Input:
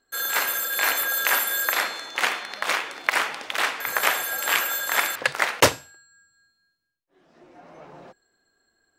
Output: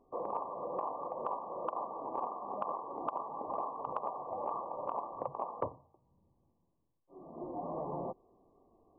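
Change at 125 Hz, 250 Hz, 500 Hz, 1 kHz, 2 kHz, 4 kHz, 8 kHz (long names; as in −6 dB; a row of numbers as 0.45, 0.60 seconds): −10.5 dB, −6.5 dB, −7.0 dB, −8.0 dB, below −40 dB, below −40 dB, below −40 dB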